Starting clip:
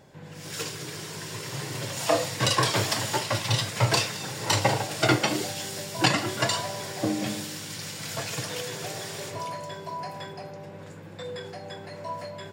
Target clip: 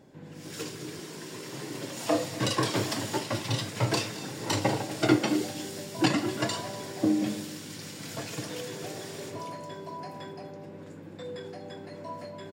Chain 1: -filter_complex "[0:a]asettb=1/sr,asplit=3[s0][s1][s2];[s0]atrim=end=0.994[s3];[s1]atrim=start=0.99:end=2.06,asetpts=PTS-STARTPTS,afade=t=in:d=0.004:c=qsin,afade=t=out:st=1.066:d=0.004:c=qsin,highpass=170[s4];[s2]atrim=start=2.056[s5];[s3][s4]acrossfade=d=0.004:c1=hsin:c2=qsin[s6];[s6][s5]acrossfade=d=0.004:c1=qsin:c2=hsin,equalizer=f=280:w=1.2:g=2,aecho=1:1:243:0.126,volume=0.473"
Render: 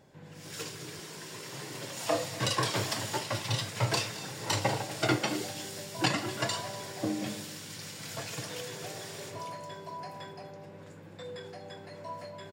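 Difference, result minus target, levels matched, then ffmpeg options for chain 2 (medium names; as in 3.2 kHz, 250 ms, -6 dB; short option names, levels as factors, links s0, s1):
250 Hz band -5.5 dB
-filter_complex "[0:a]asettb=1/sr,asplit=3[s0][s1][s2];[s0]atrim=end=0.994[s3];[s1]atrim=start=0.99:end=2.06,asetpts=PTS-STARTPTS,afade=t=in:d=0.004:c=qsin,afade=t=out:st=1.066:d=0.004:c=qsin,highpass=170[s4];[s2]atrim=start=2.056[s5];[s3][s4]acrossfade=d=0.004:c1=hsin:c2=qsin[s6];[s6][s5]acrossfade=d=0.004:c1=qsin:c2=hsin,equalizer=f=280:w=1.2:g=11.5,aecho=1:1:243:0.126,volume=0.473"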